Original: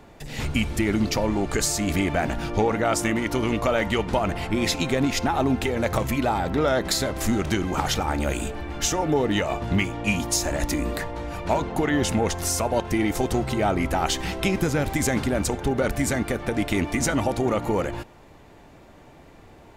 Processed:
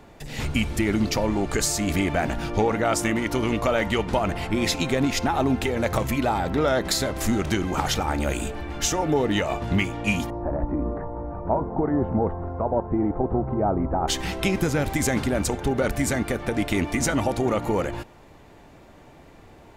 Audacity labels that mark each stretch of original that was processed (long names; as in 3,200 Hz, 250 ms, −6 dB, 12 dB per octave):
1.310000	5.660000	floating-point word with a short mantissa of 8 bits
10.300000	14.080000	low-pass filter 1,100 Hz 24 dB per octave